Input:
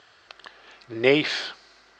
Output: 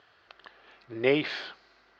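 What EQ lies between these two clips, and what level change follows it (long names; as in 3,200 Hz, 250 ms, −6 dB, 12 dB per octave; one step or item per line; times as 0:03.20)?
high-frequency loss of the air 170 metres
−4.5 dB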